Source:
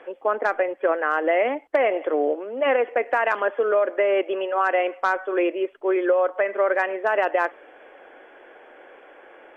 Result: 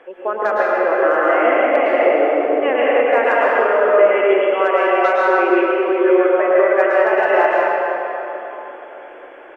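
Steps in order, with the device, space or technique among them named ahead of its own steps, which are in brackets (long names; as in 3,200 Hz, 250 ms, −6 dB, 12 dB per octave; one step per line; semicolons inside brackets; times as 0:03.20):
cave (single-tap delay 298 ms −13.5 dB; convolution reverb RT60 3.5 s, pre-delay 103 ms, DRR −6 dB)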